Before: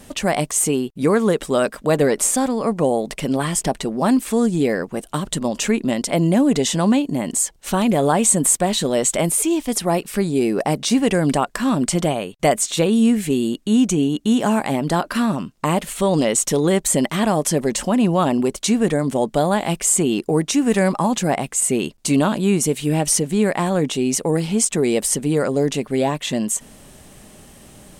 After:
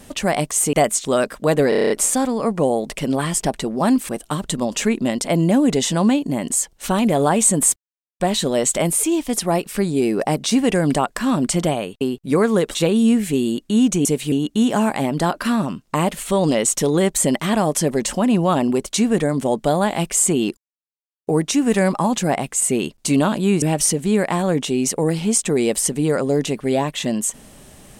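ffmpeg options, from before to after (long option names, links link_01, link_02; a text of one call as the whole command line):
ffmpeg -i in.wav -filter_complex "[0:a]asplit=18[link_01][link_02][link_03][link_04][link_05][link_06][link_07][link_08][link_09][link_10][link_11][link_12][link_13][link_14][link_15][link_16][link_17][link_18];[link_01]atrim=end=0.732[link_19];[link_02]atrim=start=12.398:end=12.722[link_20];[link_03]atrim=start=1.468:end=2.142[link_21];[link_04]atrim=start=2.108:end=2.142[link_22];[link_05]atrim=start=2.108:end=2.142[link_23];[link_06]atrim=start=2.108:end=2.142[link_24];[link_07]atrim=start=2.108:end=2.142[link_25];[link_08]atrim=start=2.108:end=2.142[link_26];[link_09]atrim=start=2.108:end=2.142[link_27];[link_10]atrim=start=2.108:end=4.302[link_28];[link_11]atrim=start=4.918:end=8.59,asetpts=PTS-STARTPTS,afade=type=out:start_time=3.668:duration=0.004:curve=hsin,apad=pad_dur=0.44[link_29];[link_12]atrim=start=8.59:end=12.402,asetpts=PTS-STARTPTS,afade=type=in:duration=0.004:curve=hsin[link_30];[link_13]atrim=start=0.728:end=1.472[link_31];[link_14]atrim=start=12.718:end=14.022[link_32];[link_15]atrim=start=22.618:end=22.892[link_33];[link_16]atrim=start=14.018:end=20.27,asetpts=PTS-STARTPTS,afade=type=out:start_time=6.248:duration=0.004:curve=hsin,apad=pad_dur=0.7[link_34];[link_17]atrim=start=20.27:end=22.622,asetpts=PTS-STARTPTS,afade=type=in:duration=0.004:curve=hsin[link_35];[link_18]atrim=start=22.888[link_36];[link_19][link_20]acrossfade=duration=0.004:curve1=hsin:curve2=hsin[link_37];[link_37][link_21]acrossfade=duration=0.004:curve1=hsin:curve2=hsin[link_38];[link_38][link_22]acrossfade=duration=0.004:curve1=hsin:curve2=hsin[link_39];[link_39][link_23]acrossfade=duration=0.004:curve1=hsin:curve2=hsin[link_40];[link_40][link_24]acrossfade=duration=0.004:curve1=hsin:curve2=hsin[link_41];[link_41][link_25]acrossfade=duration=0.004:curve1=hsin:curve2=hsin[link_42];[link_42][link_26]acrossfade=duration=0.004:curve1=hsin:curve2=hsin[link_43];[link_43][link_27]acrossfade=duration=0.004:curve1=hsin:curve2=hsin[link_44];[link_44][link_28]acrossfade=duration=0.004:curve1=hsin:curve2=hsin[link_45];[link_29][link_30]concat=n=2:v=0:a=1[link_46];[link_45][link_46]acrossfade=duration=0.004:curve1=hsin:curve2=hsin[link_47];[link_47][link_31]acrossfade=duration=0.004:curve1=hsin:curve2=hsin[link_48];[link_48][link_32]acrossfade=duration=0.004:curve1=hsin:curve2=hsin[link_49];[link_49][link_33]acrossfade=duration=0.004:curve1=hsin:curve2=hsin[link_50];[link_34][link_35]concat=n=2:v=0:a=1[link_51];[link_50][link_51]acrossfade=duration=0.004:curve1=hsin:curve2=hsin[link_52];[link_52][link_36]acrossfade=duration=0.004:curve1=hsin:curve2=hsin" out.wav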